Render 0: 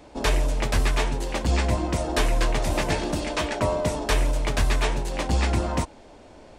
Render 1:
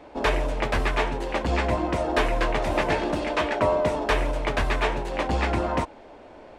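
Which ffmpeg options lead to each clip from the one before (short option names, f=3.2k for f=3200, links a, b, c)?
-af "bass=f=250:g=-8,treble=f=4k:g=-15,volume=3.5dB"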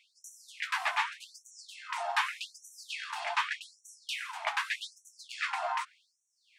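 -af "afftfilt=real='re*gte(b*sr/1024,640*pow(5700/640,0.5+0.5*sin(2*PI*0.84*pts/sr)))':imag='im*gte(b*sr/1024,640*pow(5700/640,0.5+0.5*sin(2*PI*0.84*pts/sr)))':win_size=1024:overlap=0.75,volume=-2.5dB"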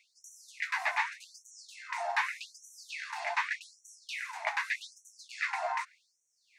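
-filter_complex "[0:a]acrossover=split=4800[a][b];[b]acompressor=threshold=-52dB:ratio=4:attack=1:release=60[c];[a][c]amix=inputs=2:normalize=0,equalizer=f=500:t=o:w=0.33:g=9,equalizer=f=1.25k:t=o:w=0.33:g=-7,equalizer=f=2k:t=o:w=0.33:g=5,equalizer=f=3.15k:t=o:w=0.33:g=-10,equalizer=f=6.3k:t=o:w=0.33:g=4"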